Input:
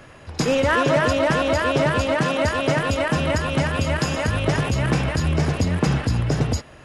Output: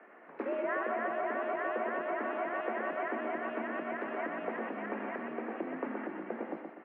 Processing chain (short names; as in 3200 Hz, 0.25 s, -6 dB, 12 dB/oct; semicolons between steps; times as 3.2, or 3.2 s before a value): compressor, threshold -22 dBFS, peak gain reduction 8 dB; mistuned SSB +79 Hz 180–2100 Hz; notches 50/100/150/200/250/300/350 Hz; feedback echo 0.124 s, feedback 41%, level -5.5 dB; gain -9 dB